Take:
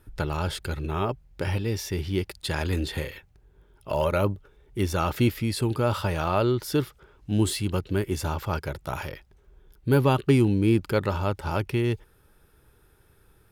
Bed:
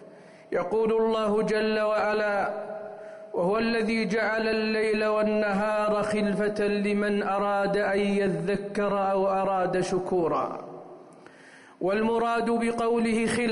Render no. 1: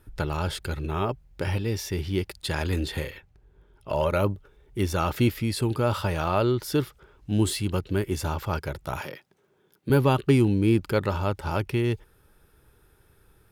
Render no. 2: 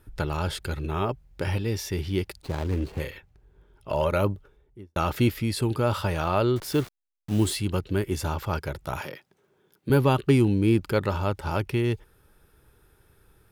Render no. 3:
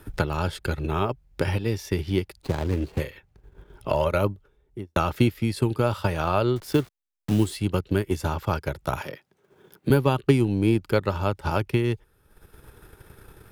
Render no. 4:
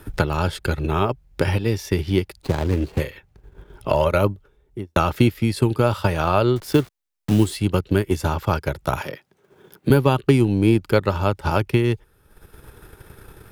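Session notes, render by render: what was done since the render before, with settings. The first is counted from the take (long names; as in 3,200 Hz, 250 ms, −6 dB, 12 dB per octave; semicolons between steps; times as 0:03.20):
0:03.10–0:04.09: high-shelf EQ 5,200 Hz → 8,700 Hz −7.5 dB; 0:09.01–0:09.90: high-pass filter 150 Hz 24 dB per octave
0:02.42–0:03.00: running median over 25 samples; 0:04.34–0:04.96: fade out and dull; 0:06.56–0:07.55: hold until the input has moved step −37.5 dBFS
transient designer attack +5 dB, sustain −7 dB; multiband upward and downward compressor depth 40%
level +4.5 dB; brickwall limiter −3 dBFS, peak gain reduction 2.5 dB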